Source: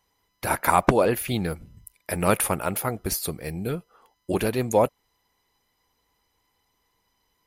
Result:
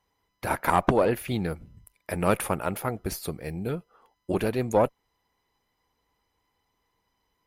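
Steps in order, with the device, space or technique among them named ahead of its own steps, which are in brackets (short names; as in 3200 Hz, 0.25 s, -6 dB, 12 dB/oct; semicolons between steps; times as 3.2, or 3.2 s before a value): tube preamp driven hard (tube stage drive 9 dB, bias 0.45; high shelf 3700 Hz -8 dB)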